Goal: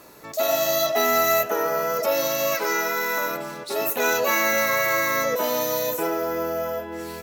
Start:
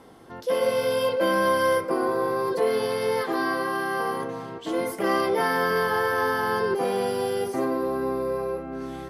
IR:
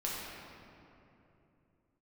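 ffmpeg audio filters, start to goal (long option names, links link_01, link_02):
-af "asetrate=55566,aresample=44100,crystalizer=i=3:c=0"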